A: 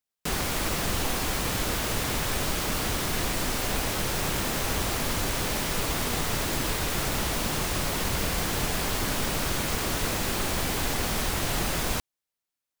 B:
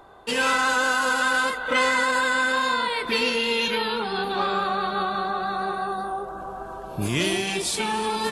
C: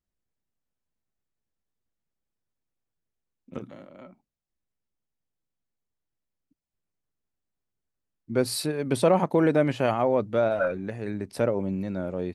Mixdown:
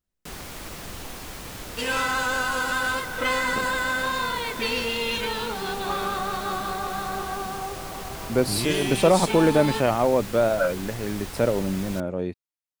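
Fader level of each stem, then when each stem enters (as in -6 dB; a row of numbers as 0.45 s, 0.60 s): -9.5 dB, -3.5 dB, +2.5 dB; 0.00 s, 1.50 s, 0.00 s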